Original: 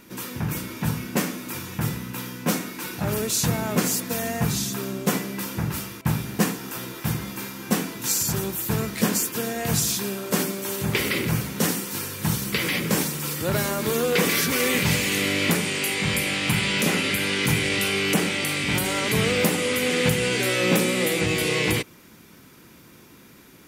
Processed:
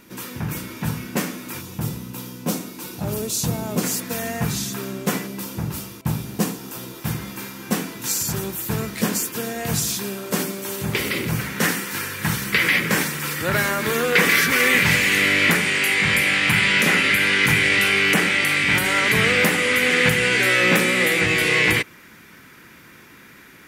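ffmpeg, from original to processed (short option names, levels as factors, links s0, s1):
-af "asetnsamples=n=441:p=0,asendcmd='1.61 equalizer g -8.5;3.83 equalizer g 2;5.27 equalizer g -5.5;7.05 equalizer g 1;11.39 equalizer g 11.5',equalizer=f=1800:t=o:w=1.2:g=1"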